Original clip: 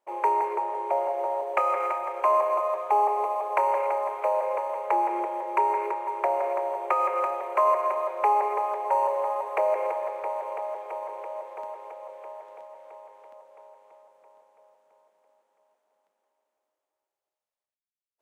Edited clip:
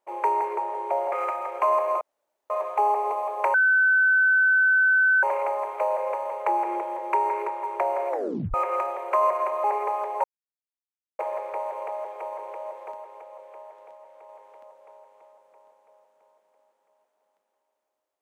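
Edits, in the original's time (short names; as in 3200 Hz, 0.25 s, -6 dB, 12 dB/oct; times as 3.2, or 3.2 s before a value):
1.12–1.74 cut
2.63 insert room tone 0.49 s
3.67 add tone 1520 Hz -16 dBFS 1.69 s
6.54 tape stop 0.44 s
8.08–8.34 cut
8.94–9.89 mute
11.62–12.99 gain -3 dB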